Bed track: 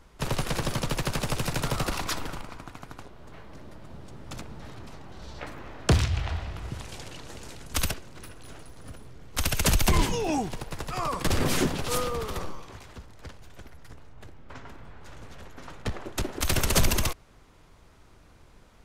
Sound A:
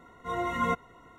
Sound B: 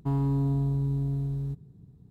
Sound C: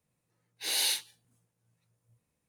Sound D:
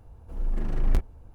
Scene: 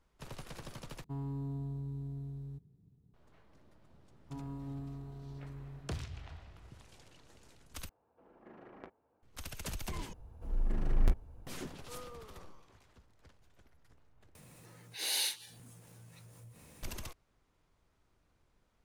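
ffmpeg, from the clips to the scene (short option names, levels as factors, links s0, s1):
-filter_complex "[2:a]asplit=2[s0][s1];[4:a]asplit=2[s2][s3];[0:a]volume=0.119[s4];[s1]aecho=1:1:40|92|159.6|247.5|361.7|510.2|703.3|954.3:0.794|0.631|0.501|0.398|0.316|0.251|0.2|0.158[s5];[s2]highpass=370,lowpass=2100[s6];[3:a]acompressor=mode=upward:threshold=0.01:ratio=4:attack=7.8:release=94:knee=2.83:detection=peak[s7];[s4]asplit=5[s8][s9][s10][s11][s12];[s8]atrim=end=1.044[s13];[s0]atrim=end=2.1,asetpts=PTS-STARTPTS,volume=0.224[s14];[s9]atrim=start=3.136:end=7.894[s15];[s6]atrim=end=1.34,asetpts=PTS-STARTPTS,volume=0.282[s16];[s10]atrim=start=9.226:end=10.134[s17];[s3]atrim=end=1.34,asetpts=PTS-STARTPTS,volume=0.596[s18];[s11]atrim=start=11.466:end=14.354[s19];[s7]atrim=end=2.48,asetpts=PTS-STARTPTS,volume=0.596[s20];[s12]atrim=start=16.826[s21];[s5]atrim=end=2.1,asetpts=PTS-STARTPTS,volume=0.158,afade=t=in:d=0.004:c=hsin,afade=t=out:st=2.096:d=0.004:c=hsin,adelay=187425S[s22];[s13][s14]acrossfade=d=0.004:c1=hsin:c2=hsin[s23];[s23][s15]acrossfade=d=0.004:c1=hsin:c2=hsin[s24];[s24][s16]acrossfade=d=0.004:c1=hsin:c2=hsin[s25];[s25][s17]acrossfade=d=0.004:c1=hsin:c2=hsin[s26];[s26][s18]acrossfade=d=0.004:c1=hsin:c2=hsin[s27];[s27][s19]acrossfade=d=0.004:c1=hsin:c2=hsin[s28];[s28][s20]acrossfade=d=0.004:c1=hsin:c2=hsin[s29];[s29][s21]acrossfade=d=0.004:c1=hsin:c2=hsin[s30];[s30][s22]amix=inputs=2:normalize=0"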